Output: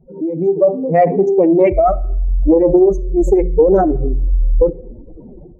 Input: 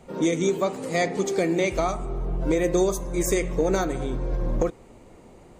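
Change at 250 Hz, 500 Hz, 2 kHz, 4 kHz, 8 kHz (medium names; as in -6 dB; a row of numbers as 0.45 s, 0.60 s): +10.0 dB, +12.0 dB, no reading, under -20 dB, under -10 dB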